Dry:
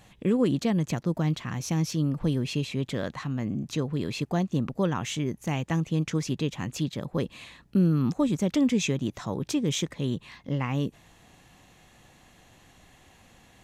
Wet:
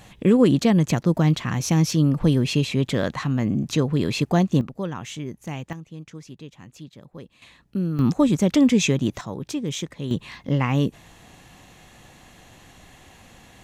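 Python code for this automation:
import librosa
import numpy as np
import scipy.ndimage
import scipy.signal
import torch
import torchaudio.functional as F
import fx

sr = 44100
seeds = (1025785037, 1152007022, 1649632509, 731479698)

y = fx.gain(x, sr, db=fx.steps((0.0, 7.5), (4.61, -3.0), (5.73, -12.0), (7.42, -3.0), (7.99, 6.5), (9.21, -1.0), (10.11, 7.0)))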